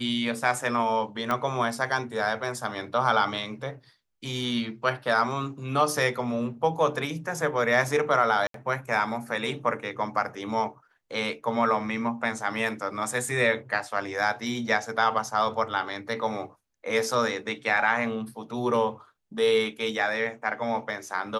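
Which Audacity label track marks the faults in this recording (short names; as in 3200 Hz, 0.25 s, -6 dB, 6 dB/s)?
1.310000	1.310000	pop -14 dBFS
8.470000	8.540000	gap 73 ms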